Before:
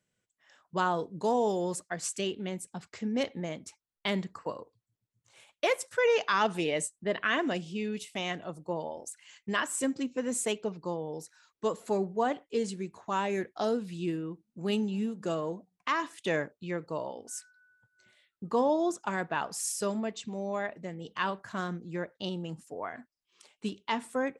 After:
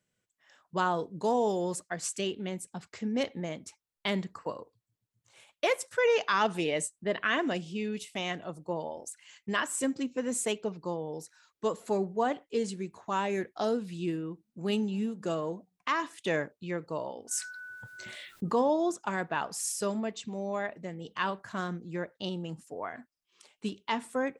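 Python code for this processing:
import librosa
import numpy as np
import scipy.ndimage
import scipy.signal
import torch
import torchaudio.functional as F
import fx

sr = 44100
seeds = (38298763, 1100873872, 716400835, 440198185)

y = fx.env_flatten(x, sr, amount_pct=50, at=(17.31, 18.62))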